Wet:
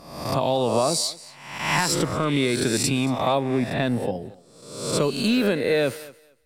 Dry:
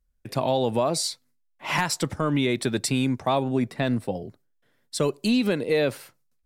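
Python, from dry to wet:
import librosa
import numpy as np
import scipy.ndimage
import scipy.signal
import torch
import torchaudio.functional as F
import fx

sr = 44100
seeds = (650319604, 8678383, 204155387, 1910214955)

y = fx.spec_swells(x, sr, rise_s=0.82)
y = fx.echo_thinned(y, sr, ms=228, feedback_pct=18, hz=200.0, wet_db=-19.5)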